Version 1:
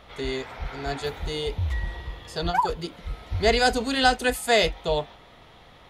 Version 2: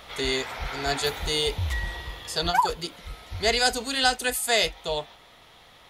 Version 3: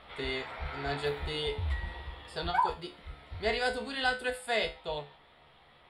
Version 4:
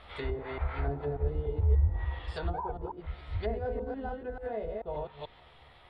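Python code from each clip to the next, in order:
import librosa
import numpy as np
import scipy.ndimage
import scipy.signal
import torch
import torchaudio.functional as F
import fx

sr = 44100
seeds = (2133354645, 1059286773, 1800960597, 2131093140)

y1 = fx.low_shelf(x, sr, hz=490.0, db=-6.5)
y1 = fx.rider(y1, sr, range_db=5, speed_s=2.0)
y1 = fx.high_shelf(y1, sr, hz=4900.0, db=10.0)
y2 = scipy.signal.lfilter(np.full(7, 1.0 / 7), 1.0, y1)
y2 = fx.comb_fb(y2, sr, f0_hz=72.0, decay_s=0.3, harmonics='all', damping=0.0, mix_pct=80)
y2 = y2 * librosa.db_to_amplitude(1.0)
y3 = fx.reverse_delay(y2, sr, ms=146, wet_db=-2.0)
y3 = fx.env_lowpass_down(y3, sr, base_hz=530.0, full_db=-28.5)
y3 = fx.low_shelf_res(y3, sr, hz=120.0, db=6.0, q=1.5)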